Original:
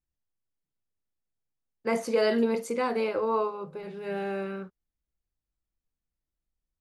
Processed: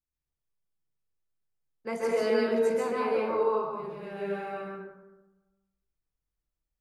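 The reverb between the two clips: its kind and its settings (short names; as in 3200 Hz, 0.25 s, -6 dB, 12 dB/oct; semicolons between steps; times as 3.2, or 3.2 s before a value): plate-style reverb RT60 1.1 s, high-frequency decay 0.4×, pre-delay 0.12 s, DRR -5 dB; gain -7 dB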